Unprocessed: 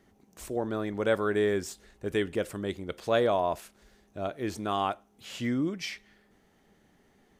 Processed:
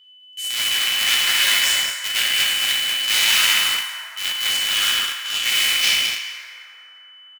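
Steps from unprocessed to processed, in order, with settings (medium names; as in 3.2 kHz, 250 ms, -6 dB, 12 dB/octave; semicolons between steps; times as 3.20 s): cycle switcher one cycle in 2, inverted; Chebyshev shaper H 3 -17 dB, 5 -7 dB, 7 -21 dB, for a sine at -12 dBFS; Chebyshev high-pass 2.2 kHz, order 3; whistle 3 kHz -33 dBFS; gate with hold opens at -27 dBFS; on a send: delay 212 ms -6.5 dB; on the sum: plate-style reverb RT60 3.6 s, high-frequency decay 0.35×, DRR -7.5 dB; in parallel at -3.5 dB: small samples zeroed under -22.5 dBFS; on the sum: trim +3.5 dB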